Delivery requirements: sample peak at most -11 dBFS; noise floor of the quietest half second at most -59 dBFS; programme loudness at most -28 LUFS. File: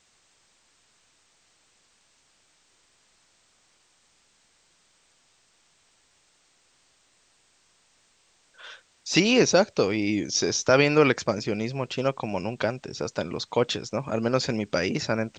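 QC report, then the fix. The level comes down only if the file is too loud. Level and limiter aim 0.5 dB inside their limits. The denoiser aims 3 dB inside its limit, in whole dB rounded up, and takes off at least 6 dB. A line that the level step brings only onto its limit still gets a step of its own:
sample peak -6.0 dBFS: fail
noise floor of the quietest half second -65 dBFS: OK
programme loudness -24.5 LUFS: fail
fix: gain -4 dB; limiter -11.5 dBFS

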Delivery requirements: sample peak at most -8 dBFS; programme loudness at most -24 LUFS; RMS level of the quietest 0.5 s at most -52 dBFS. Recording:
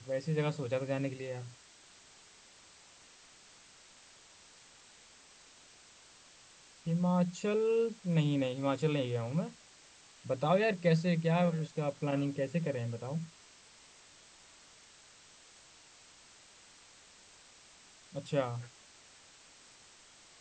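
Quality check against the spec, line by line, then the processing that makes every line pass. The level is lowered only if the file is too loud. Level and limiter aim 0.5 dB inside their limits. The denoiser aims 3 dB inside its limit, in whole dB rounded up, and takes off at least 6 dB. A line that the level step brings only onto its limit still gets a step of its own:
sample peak -16.5 dBFS: OK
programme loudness -33.5 LUFS: OK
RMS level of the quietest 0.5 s -59 dBFS: OK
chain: none

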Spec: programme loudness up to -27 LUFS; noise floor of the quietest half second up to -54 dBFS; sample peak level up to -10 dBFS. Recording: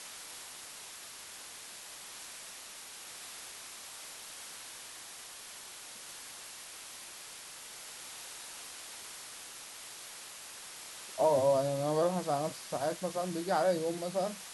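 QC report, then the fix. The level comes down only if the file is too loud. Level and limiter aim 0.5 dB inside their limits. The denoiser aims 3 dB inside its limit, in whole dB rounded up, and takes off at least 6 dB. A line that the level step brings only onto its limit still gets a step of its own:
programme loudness -37.0 LUFS: OK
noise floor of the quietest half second -48 dBFS: fail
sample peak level -16.5 dBFS: OK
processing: denoiser 9 dB, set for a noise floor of -48 dBFS

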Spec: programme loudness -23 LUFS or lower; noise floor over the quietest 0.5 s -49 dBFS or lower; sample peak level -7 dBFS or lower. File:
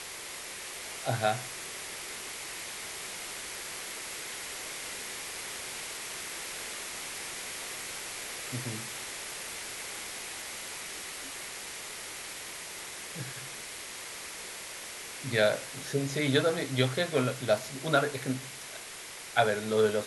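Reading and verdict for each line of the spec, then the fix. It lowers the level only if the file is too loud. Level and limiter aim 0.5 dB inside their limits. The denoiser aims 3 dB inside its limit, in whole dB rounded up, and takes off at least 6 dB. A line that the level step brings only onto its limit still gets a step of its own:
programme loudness -34.0 LUFS: OK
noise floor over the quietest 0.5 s -44 dBFS: fail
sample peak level -9.5 dBFS: OK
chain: denoiser 8 dB, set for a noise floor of -44 dBFS

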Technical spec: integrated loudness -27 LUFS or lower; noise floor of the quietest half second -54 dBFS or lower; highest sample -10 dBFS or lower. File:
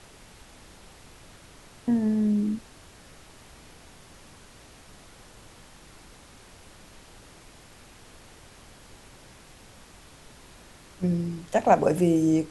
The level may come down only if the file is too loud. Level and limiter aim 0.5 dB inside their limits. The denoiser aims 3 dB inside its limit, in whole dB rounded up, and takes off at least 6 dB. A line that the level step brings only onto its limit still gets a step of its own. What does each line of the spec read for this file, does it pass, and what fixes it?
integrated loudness -24.5 LUFS: fail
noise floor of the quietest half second -50 dBFS: fail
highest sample -6.0 dBFS: fail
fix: denoiser 6 dB, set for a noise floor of -50 dBFS; gain -3 dB; limiter -10.5 dBFS

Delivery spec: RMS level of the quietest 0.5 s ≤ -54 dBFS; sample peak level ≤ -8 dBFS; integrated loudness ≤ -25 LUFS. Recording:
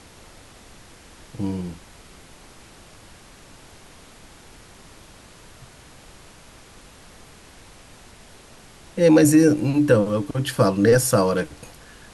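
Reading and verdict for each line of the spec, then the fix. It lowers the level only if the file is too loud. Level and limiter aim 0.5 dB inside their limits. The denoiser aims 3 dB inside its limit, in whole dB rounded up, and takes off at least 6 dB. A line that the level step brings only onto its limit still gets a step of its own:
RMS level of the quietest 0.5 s -47 dBFS: fail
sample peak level -5.5 dBFS: fail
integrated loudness -19.0 LUFS: fail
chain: denoiser 6 dB, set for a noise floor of -47 dBFS; gain -6.5 dB

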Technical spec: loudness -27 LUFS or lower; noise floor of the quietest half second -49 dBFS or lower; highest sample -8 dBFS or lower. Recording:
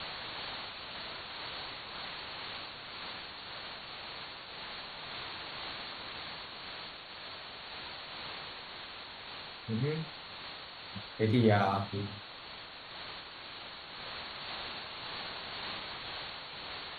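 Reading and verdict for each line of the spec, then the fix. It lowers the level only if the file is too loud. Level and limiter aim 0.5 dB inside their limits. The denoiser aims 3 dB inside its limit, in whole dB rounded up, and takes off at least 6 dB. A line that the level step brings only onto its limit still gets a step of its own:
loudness -38.5 LUFS: OK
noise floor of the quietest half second -48 dBFS: fail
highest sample -13.5 dBFS: OK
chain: denoiser 6 dB, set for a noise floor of -48 dBFS

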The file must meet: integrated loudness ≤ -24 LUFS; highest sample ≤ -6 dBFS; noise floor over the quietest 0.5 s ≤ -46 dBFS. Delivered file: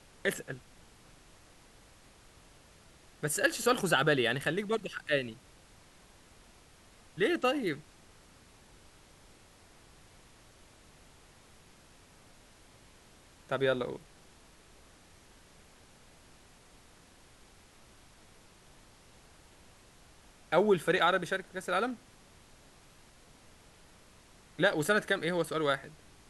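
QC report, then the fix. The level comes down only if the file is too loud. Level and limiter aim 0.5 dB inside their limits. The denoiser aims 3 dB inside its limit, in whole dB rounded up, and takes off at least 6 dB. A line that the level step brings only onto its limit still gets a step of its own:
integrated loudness -30.5 LUFS: OK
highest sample -13.0 dBFS: OK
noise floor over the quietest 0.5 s -59 dBFS: OK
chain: none

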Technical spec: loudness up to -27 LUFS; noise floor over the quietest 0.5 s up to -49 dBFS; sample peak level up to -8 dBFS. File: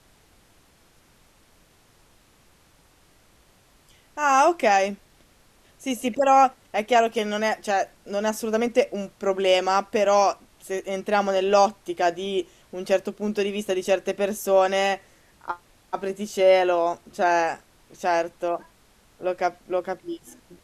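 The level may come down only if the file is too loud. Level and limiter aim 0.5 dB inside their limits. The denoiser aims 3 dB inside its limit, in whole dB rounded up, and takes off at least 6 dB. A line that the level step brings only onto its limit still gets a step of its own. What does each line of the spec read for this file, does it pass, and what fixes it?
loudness -23.5 LUFS: fail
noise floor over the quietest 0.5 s -58 dBFS: OK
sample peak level -5.5 dBFS: fail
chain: gain -4 dB

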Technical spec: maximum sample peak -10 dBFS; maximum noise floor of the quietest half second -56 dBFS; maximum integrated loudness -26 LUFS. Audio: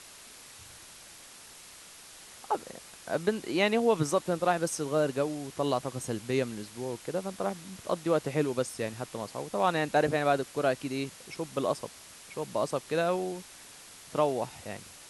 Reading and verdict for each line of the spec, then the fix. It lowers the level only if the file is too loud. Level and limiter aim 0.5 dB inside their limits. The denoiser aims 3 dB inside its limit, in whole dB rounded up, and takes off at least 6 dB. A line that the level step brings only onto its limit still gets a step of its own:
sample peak -12.0 dBFS: OK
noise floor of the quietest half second -50 dBFS: fail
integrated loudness -30.5 LUFS: OK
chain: denoiser 9 dB, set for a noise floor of -50 dBFS

